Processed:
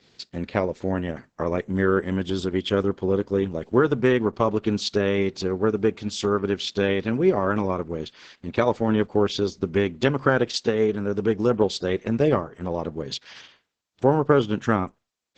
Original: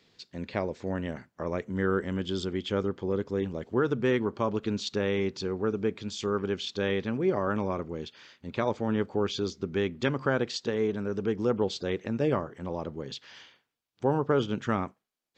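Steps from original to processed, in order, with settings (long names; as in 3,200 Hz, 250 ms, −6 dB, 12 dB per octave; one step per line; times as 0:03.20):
transient designer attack +2 dB, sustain −3 dB
level +6.5 dB
Opus 10 kbit/s 48,000 Hz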